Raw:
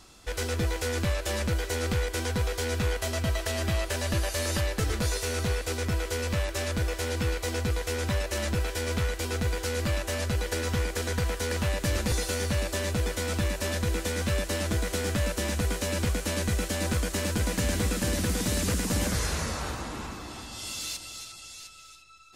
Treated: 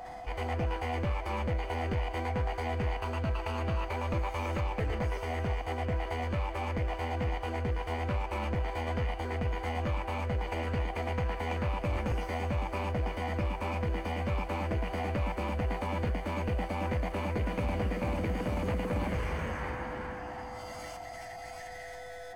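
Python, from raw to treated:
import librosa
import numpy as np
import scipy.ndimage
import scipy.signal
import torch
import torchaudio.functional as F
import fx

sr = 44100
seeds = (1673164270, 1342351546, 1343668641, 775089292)

y = x + 10.0 ** (-38.0 / 20.0) * np.sin(2.0 * np.pi * 500.0 * np.arange(len(x)) / sr)
y = scipy.signal.savgol_filter(y, 41, 4, mode='constant')
y = fx.leveller(y, sr, passes=1)
y = fx.formant_shift(y, sr, semitones=6)
y = F.gain(torch.from_numpy(y), -6.0).numpy()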